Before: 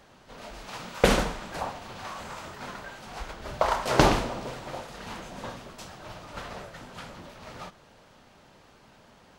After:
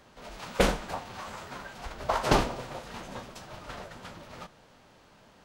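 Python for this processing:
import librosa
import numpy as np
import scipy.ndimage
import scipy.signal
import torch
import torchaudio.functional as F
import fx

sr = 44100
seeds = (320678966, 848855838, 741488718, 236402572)

y = fx.stretch_vocoder(x, sr, factor=0.58)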